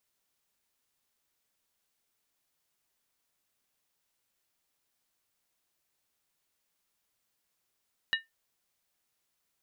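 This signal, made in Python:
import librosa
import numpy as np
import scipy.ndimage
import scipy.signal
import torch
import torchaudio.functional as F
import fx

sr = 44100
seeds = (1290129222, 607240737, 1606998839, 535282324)

y = fx.strike_skin(sr, length_s=0.63, level_db=-22.5, hz=1810.0, decay_s=0.17, tilt_db=3.0, modes=3)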